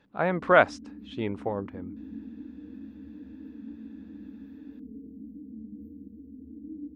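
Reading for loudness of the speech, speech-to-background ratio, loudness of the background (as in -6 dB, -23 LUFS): -25.5 LUFS, 18.5 dB, -44.0 LUFS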